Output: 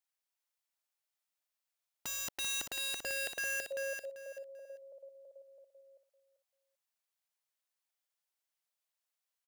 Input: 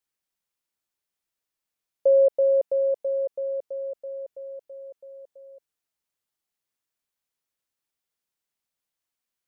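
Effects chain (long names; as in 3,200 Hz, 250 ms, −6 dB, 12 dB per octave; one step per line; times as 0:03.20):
Chebyshev high-pass filter 600 Hz, order 3
wrap-around overflow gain 29 dB
repeating echo 390 ms, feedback 22%, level −6 dB
level −4 dB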